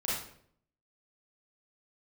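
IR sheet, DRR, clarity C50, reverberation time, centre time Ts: -8.0 dB, -1.0 dB, 0.65 s, 61 ms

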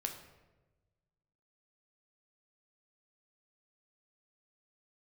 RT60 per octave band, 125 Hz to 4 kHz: 1.9 s, 1.4 s, 1.3 s, 1.0 s, 0.90 s, 0.70 s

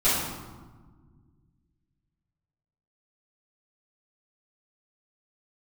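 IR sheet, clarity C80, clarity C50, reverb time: 2.5 dB, -0.5 dB, 1.5 s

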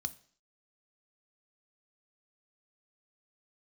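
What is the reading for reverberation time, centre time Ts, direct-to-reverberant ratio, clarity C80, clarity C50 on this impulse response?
0.50 s, 2 ms, 11.5 dB, 23.0 dB, 20.0 dB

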